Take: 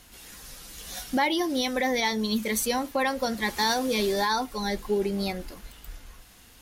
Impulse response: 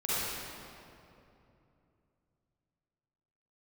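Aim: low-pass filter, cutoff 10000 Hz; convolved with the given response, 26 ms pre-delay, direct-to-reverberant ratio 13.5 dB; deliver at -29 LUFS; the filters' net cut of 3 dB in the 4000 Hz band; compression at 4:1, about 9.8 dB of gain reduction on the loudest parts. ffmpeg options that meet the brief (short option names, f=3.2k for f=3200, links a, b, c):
-filter_complex "[0:a]lowpass=10k,equalizer=f=4k:t=o:g=-3.5,acompressor=threshold=-34dB:ratio=4,asplit=2[a][b];[1:a]atrim=start_sample=2205,adelay=26[c];[b][c]afir=irnorm=-1:irlink=0,volume=-22.5dB[d];[a][d]amix=inputs=2:normalize=0,volume=7.5dB"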